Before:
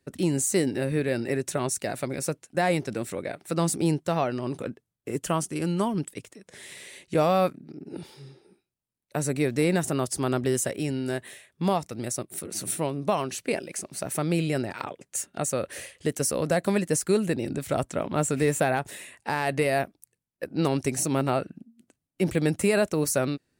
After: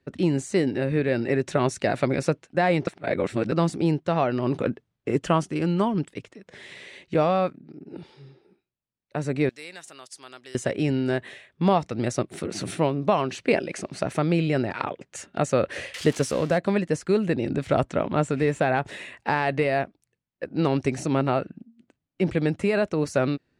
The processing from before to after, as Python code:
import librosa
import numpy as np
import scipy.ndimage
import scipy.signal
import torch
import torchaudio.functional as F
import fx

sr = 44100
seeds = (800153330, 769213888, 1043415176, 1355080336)

y = fx.differentiator(x, sr, at=(9.49, 10.55))
y = fx.crossing_spikes(y, sr, level_db=-23.5, at=(15.94, 16.58))
y = fx.edit(y, sr, fx.reverse_span(start_s=2.87, length_s=0.65), tone=tone)
y = scipy.signal.sosfilt(scipy.signal.butter(2, 3700.0, 'lowpass', fs=sr, output='sos'), y)
y = fx.rider(y, sr, range_db=5, speed_s=0.5)
y = y * 10.0 ** (3.5 / 20.0)